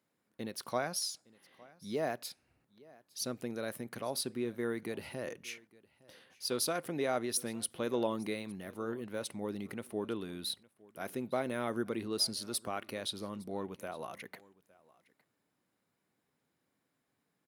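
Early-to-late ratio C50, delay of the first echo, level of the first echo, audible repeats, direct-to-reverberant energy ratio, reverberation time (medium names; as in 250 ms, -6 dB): no reverb, 861 ms, -23.5 dB, 1, no reverb, no reverb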